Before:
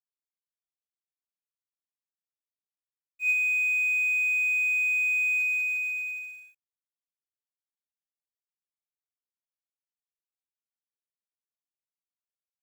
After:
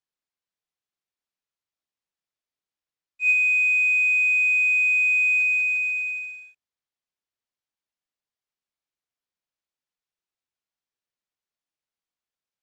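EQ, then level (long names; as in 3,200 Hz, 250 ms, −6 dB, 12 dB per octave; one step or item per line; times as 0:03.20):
low-pass filter 5,900 Hz 12 dB per octave
+5.5 dB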